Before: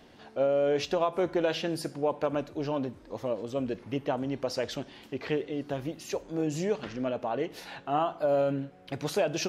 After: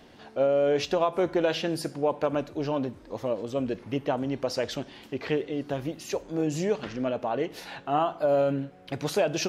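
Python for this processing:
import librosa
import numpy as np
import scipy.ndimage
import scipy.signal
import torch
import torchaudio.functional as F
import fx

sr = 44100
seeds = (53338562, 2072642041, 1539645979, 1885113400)

y = F.gain(torch.from_numpy(x), 2.5).numpy()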